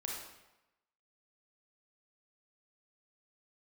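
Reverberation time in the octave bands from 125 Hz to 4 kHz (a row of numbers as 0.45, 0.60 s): 0.90, 0.90, 0.95, 1.0, 0.90, 0.80 s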